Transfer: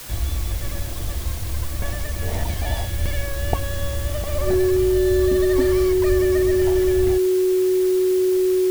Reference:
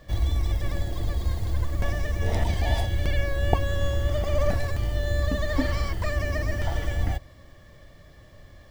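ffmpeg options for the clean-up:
ffmpeg -i in.wav -filter_complex "[0:a]bandreject=frequency=370:width=30,asplit=3[link_01][link_02][link_03];[link_01]afade=type=out:start_time=3:duration=0.02[link_04];[link_02]highpass=frequency=140:width=0.5412,highpass=frequency=140:width=1.3066,afade=type=in:start_time=3:duration=0.02,afade=type=out:start_time=3.12:duration=0.02[link_05];[link_03]afade=type=in:start_time=3.12:duration=0.02[link_06];[link_04][link_05][link_06]amix=inputs=3:normalize=0,asplit=3[link_07][link_08][link_09];[link_07]afade=type=out:start_time=6.08:duration=0.02[link_10];[link_08]highpass=frequency=140:width=0.5412,highpass=frequency=140:width=1.3066,afade=type=in:start_time=6.08:duration=0.02,afade=type=out:start_time=6.2:duration=0.02[link_11];[link_09]afade=type=in:start_time=6.2:duration=0.02[link_12];[link_10][link_11][link_12]amix=inputs=3:normalize=0,afwtdn=0.014" out.wav

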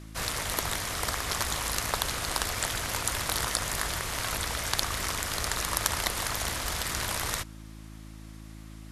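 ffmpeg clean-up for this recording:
ffmpeg -i in.wav -af "bandreject=frequency=53.8:width_type=h:width=4,bandreject=frequency=107.6:width_type=h:width=4,bandreject=frequency=161.4:width_type=h:width=4,bandreject=frequency=215.2:width_type=h:width=4,bandreject=frequency=269:width_type=h:width=4,bandreject=frequency=322.8:width_type=h:width=4" out.wav

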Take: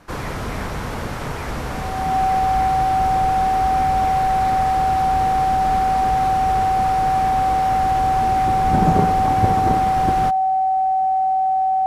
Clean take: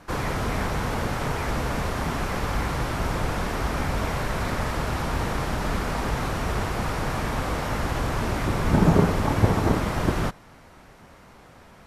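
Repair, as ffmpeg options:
ffmpeg -i in.wav -af "bandreject=frequency=760:width=30" out.wav

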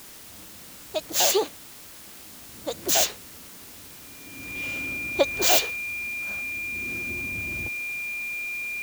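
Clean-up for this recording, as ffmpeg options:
ffmpeg -i in.wav -af "bandreject=frequency=2400:width=30,afwtdn=0.0056" out.wav

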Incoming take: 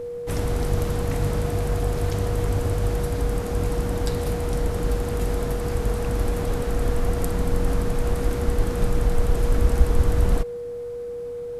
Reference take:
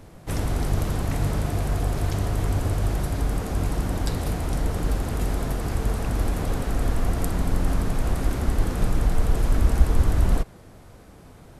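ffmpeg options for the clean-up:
ffmpeg -i in.wav -af "bandreject=frequency=480:width=30" out.wav

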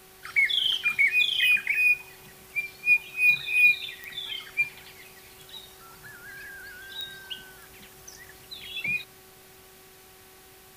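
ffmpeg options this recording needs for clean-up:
ffmpeg -i in.wav -af "adeclick=threshold=4,bandreject=frequency=377.6:width_type=h:width=4,bandreject=frequency=755.2:width_type=h:width=4,bandreject=frequency=1132.8:width_type=h:width=4,bandreject=frequency=1510.4:width_type=h:width=4,bandreject=frequency=1888:width_type=h:width=4,bandreject=frequency=2265.6:width_type=h:width=4" out.wav

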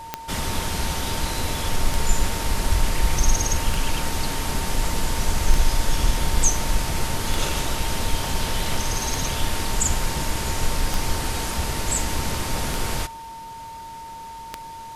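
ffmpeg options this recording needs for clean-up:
ffmpeg -i in.wav -af "adeclick=threshold=4,bandreject=frequency=910:width=30" out.wav

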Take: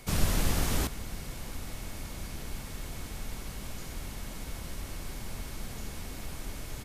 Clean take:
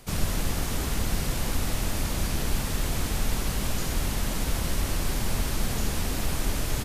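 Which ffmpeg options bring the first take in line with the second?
ffmpeg -i in.wav -af "bandreject=frequency=2200:width=30,asetnsamples=nb_out_samples=441:pad=0,asendcmd='0.87 volume volume 12dB',volume=0dB" out.wav

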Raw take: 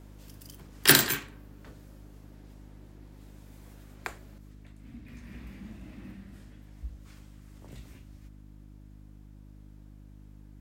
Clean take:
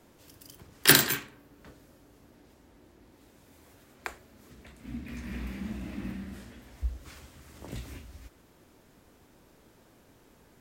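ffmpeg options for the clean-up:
ffmpeg -i in.wav -af "bandreject=frequency=50.8:width_type=h:width=4,bandreject=frequency=101.6:width_type=h:width=4,bandreject=frequency=152.4:width_type=h:width=4,bandreject=frequency=203.2:width_type=h:width=4,bandreject=frequency=254:width_type=h:width=4,bandreject=frequency=304.8:width_type=h:width=4,asetnsamples=nb_out_samples=441:pad=0,asendcmd='4.38 volume volume 8.5dB',volume=0dB" out.wav

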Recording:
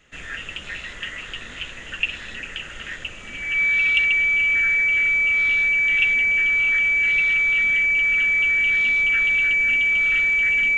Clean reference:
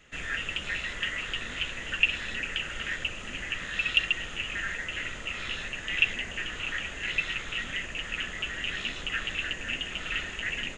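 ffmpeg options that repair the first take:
ffmpeg -i in.wav -af "bandreject=frequency=2300:width=30" out.wav

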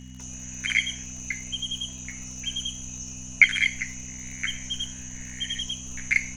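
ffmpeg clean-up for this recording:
ffmpeg -i in.wav -af "adeclick=threshold=4,bandreject=frequency=63.3:width_type=h:width=4,bandreject=frequency=126.6:width_type=h:width=4,bandreject=frequency=189.9:width_type=h:width=4,bandreject=frequency=253.2:width_type=h:width=4,bandreject=frequency=2900:width=30" out.wav

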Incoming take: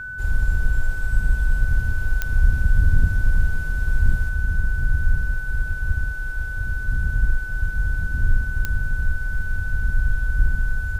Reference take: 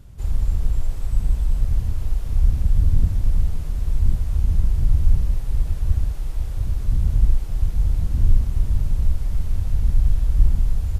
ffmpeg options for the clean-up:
ffmpeg -i in.wav -af "adeclick=threshold=4,bandreject=frequency=1500:width=30,asetnsamples=nb_out_samples=441:pad=0,asendcmd='4.29 volume volume 3.5dB',volume=0dB" out.wav

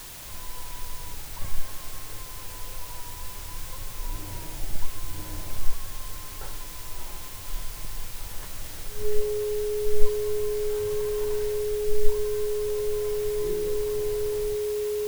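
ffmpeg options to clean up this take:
ffmpeg -i in.wav -af "adeclick=threshold=4,bandreject=frequency=420:width=30,afwtdn=0.0079" out.wav

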